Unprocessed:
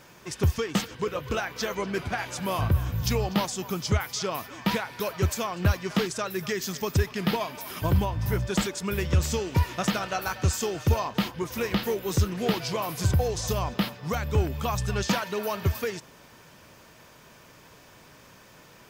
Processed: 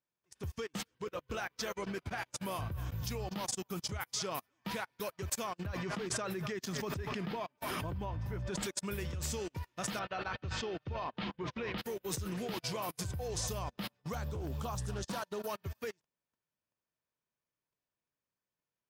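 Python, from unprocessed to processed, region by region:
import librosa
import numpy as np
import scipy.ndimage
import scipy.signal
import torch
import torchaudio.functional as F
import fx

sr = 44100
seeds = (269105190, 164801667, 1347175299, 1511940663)

y = fx.chain(x, sr, fx.lowpass(hz=2300.0, slope=6),
    fx.pre_swell(db_per_s=51.0), at=(5.66, 8.63))
y = fx.chain(y, sr, fx.lowpass(hz=4000.0, slope=24),
    fx.hum_notches(base_hz=50, count=4),
    fx.sustainer(db_per_s=100.0), at=(9.99, 11.78))
y = fx.chain(y, sr, fx.peak_eq(hz=2200.0, db=-9.0, octaves=0.9),
    fx.doppler_dist(depth_ms=0.43), at=(14.14, 15.49))
y = fx.level_steps(y, sr, step_db=17)
y = fx.dynamic_eq(y, sr, hz=9500.0, q=2.1, threshold_db=-59.0, ratio=4.0, max_db=6)
y = fx.upward_expand(y, sr, threshold_db=-50.0, expansion=2.5)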